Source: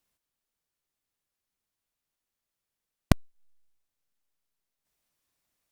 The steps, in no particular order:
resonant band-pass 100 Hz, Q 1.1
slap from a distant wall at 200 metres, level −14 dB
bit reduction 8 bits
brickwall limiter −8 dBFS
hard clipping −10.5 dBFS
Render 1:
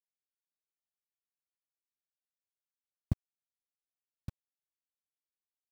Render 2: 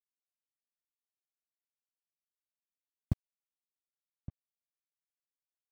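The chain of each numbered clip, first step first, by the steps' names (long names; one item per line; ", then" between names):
brickwall limiter, then slap from a distant wall, then hard clipping, then resonant band-pass, then bit reduction
brickwall limiter, then hard clipping, then resonant band-pass, then bit reduction, then slap from a distant wall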